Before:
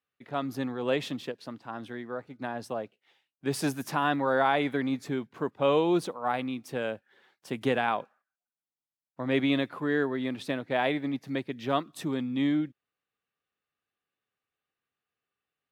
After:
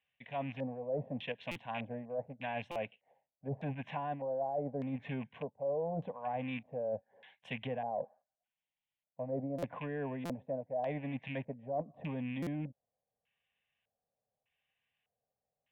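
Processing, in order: rattle on loud lows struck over -42 dBFS, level -36 dBFS; band-stop 870 Hz, Q 25; low-pass that closes with the level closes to 790 Hz, closed at -25.5 dBFS; static phaser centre 1.3 kHz, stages 6; LFO low-pass square 0.83 Hz 610–3200 Hz; reverse; compression 5:1, threshold -39 dBFS, peak gain reduction 18 dB; reverse; buffer glitch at 1.51/2.71/9.58/10.25/12.42 s, samples 256, times 7; trim +4 dB

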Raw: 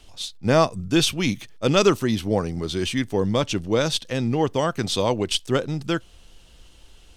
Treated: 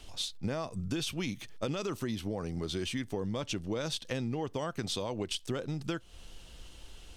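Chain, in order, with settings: peak limiter -13.5 dBFS, peak gain reduction 9.5 dB; compression 6:1, threshold -32 dBFS, peak gain reduction 13 dB

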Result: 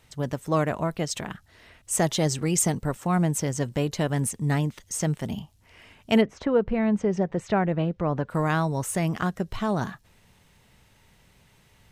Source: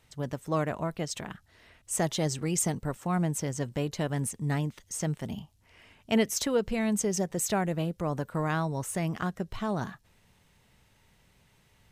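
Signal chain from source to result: 6.20–8.29 s: low-pass 1.4 kHz -> 3 kHz 12 dB/octave; trim +5 dB

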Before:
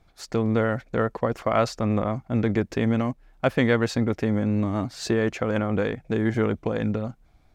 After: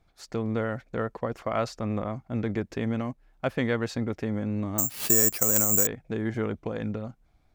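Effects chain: 4.78–5.87 s: careless resampling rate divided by 6×, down none, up zero stuff; trim -6 dB

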